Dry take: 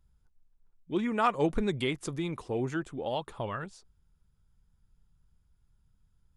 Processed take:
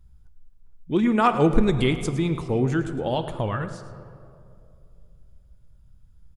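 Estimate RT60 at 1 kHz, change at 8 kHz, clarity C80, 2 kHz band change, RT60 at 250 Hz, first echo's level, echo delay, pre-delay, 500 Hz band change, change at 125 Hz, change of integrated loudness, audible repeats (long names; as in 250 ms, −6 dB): 2.2 s, +6.0 dB, 10.5 dB, +6.0 dB, 2.6 s, −14.0 dB, 108 ms, 4 ms, +7.5 dB, +12.0 dB, +8.5 dB, 1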